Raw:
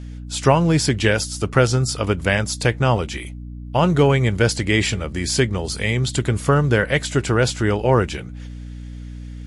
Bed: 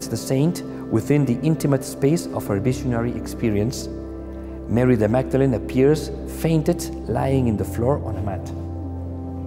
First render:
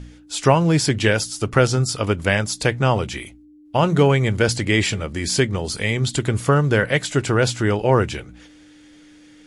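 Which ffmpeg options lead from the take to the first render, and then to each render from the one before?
-af "bandreject=f=60:t=h:w=4,bandreject=f=120:t=h:w=4,bandreject=f=180:t=h:w=4,bandreject=f=240:t=h:w=4"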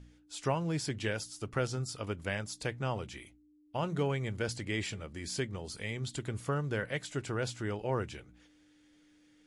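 -af "volume=0.15"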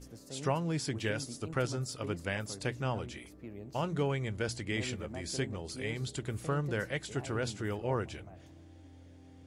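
-filter_complex "[1:a]volume=0.0531[s0];[0:a][s0]amix=inputs=2:normalize=0"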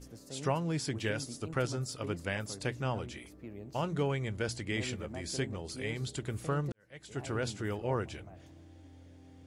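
-filter_complex "[0:a]asplit=2[s0][s1];[s0]atrim=end=6.72,asetpts=PTS-STARTPTS,afade=t=out:st=6.716:d=0.004:c=hsin[s2];[s1]atrim=start=6.72,asetpts=PTS-STARTPTS,afade=t=in:d=0.54:c=qua[s3];[s2][s3]concat=n=2:v=0:a=1"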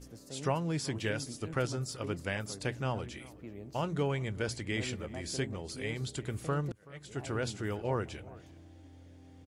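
-filter_complex "[0:a]asplit=2[s0][s1];[s1]adelay=379,volume=0.0891,highshelf=f=4000:g=-8.53[s2];[s0][s2]amix=inputs=2:normalize=0"

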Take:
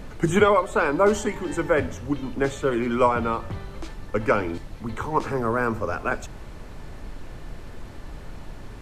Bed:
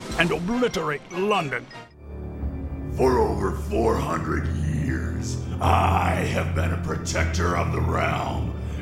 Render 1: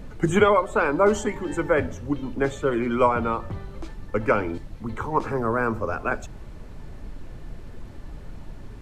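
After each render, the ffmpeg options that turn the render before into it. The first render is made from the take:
-af "afftdn=nr=6:nf=-39"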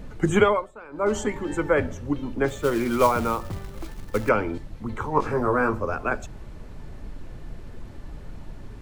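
-filter_complex "[0:a]asettb=1/sr,asplit=3[s0][s1][s2];[s0]atrim=end=2.484[s3];[s1]atrim=start=2.48:end=4.29,asetpts=PTS-STARTPTS,afade=t=in:d=0.004:c=qsin,afade=t=out:st=1.806:d=0.004:c=qsin,acrusher=bits=4:mode=log:mix=0:aa=0.000001[s4];[s2]atrim=start=4.286[s5];[s3][s4]acrossfade=d=0.004:c1=hsin:c2=qsin[s6];[s6][s5]acrossfade=d=0.004:c1=qsin:c2=hsin,asettb=1/sr,asplit=3[s7][s8][s9];[s7]atrim=end=5.144[s10];[s8]atrim=start=5.14:end=5.75,asetpts=PTS-STARTPTS,afade=t=in:d=0.004:c=qsin,afade=t=out:st=0.606:d=0.004:c=qsin,asplit=2[s11][s12];[s12]adelay=20,volume=0.631[s13];[s11][s13]amix=inputs=2:normalize=0,atrim=end_sample=26901[s14];[s9]atrim=start=5.746[s15];[s10][s14]acrossfade=d=0.004:c1=hsin:c2=qsin[s16];[s16][s15]acrossfade=d=0.004:c1=qsin:c2=hsin,asplit=3[s17][s18][s19];[s17]atrim=end=0.72,asetpts=PTS-STARTPTS,afade=t=out:st=0.42:d=0.3:silence=0.0891251[s20];[s18]atrim=start=0.72:end=0.9,asetpts=PTS-STARTPTS,volume=0.0891[s21];[s19]atrim=start=0.9,asetpts=PTS-STARTPTS,afade=t=in:d=0.3:silence=0.0891251[s22];[s20][s21][s22]concat=n=3:v=0:a=1"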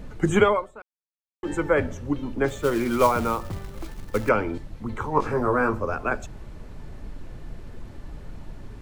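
-filter_complex "[0:a]asplit=3[s0][s1][s2];[s0]atrim=end=0.82,asetpts=PTS-STARTPTS,afade=t=out:st=0.816:d=0.004:c=hsin[s3];[s1]atrim=start=0.82:end=1.43,asetpts=PTS-STARTPTS,volume=0[s4];[s2]atrim=start=1.43,asetpts=PTS-STARTPTS,afade=t=in:d=0.004:c=hsin[s5];[s3][s4][s5]concat=n=3:v=0:a=1"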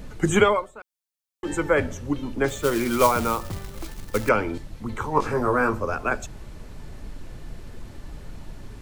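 -af "highshelf=f=3000:g=8"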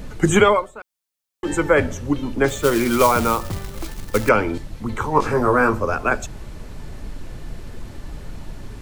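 -af "volume=1.78,alimiter=limit=0.708:level=0:latency=1"

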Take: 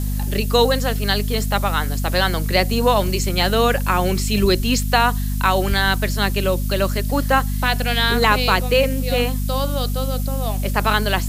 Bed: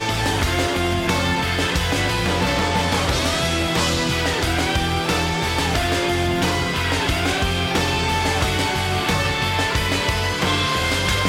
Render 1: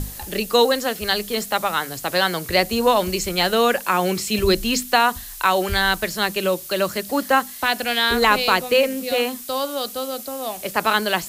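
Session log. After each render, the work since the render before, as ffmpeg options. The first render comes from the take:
-af "bandreject=f=50:t=h:w=6,bandreject=f=100:t=h:w=6,bandreject=f=150:t=h:w=6,bandreject=f=200:t=h:w=6,bandreject=f=250:t=h:w=6"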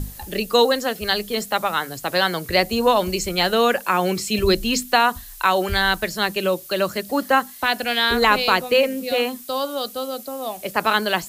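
-af "afftdn=nr=6:nf=-36"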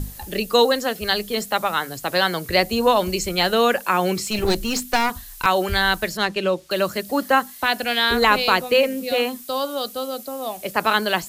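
-filter_complex "[0:a]asettb=1/sr,asplit=3[s0][s1][s2];[s0]atrim=end=4.264[s3];[s1]atrim=start=4.26:end=5.46,asetpts=PTS-STARTPTS,afade=t=in:d=0.004:c=qsin,afade=t=out:st=1.196:d=0.004:c=qsin,aeval=exprs='clip(val(0),-1,0.0631)':c=same[s4];[s2]atrim=start=5.456[s5];[s3][s4]acrossfade=d=0.004:c1=hsin:c2=qsin[s6];[s6][s5]acrossfade=d=0.004:c1=qsin:c2=hsin,asettb=1/sr,asplit=3[s7][s8][s9];[s7]atrim=end=6.174[s10];[s8]atrim=start=6.17:end=6.71,asetpts=PTS-STARTPTS,afade=t=in:d=0.004:c=qsin,afade=t=out:st=0.536:d=0.004:c=qsin,adynamicsmooth=sensitivity=1.5:basefreq=5500[s11];[s9]atrim=start=6.706[s12];[s10][s11]acrossfade=d=0.004:c1=hsin:c2=qsin[s13];[s13][s12]acrossfade=d=0.004:c1=qsin:c2=hsin"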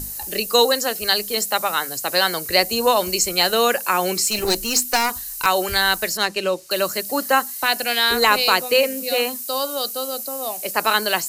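-af "bass=f=250:g=-8,treble=f=4000:g=10,bandreject=f=3400:w=7.3"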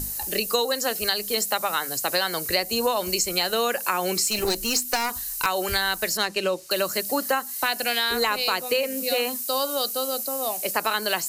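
-af "acompressor=threshold=0.1:ratio=6"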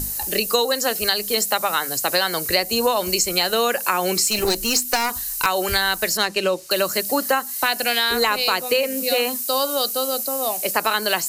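-af "volume=1.58"

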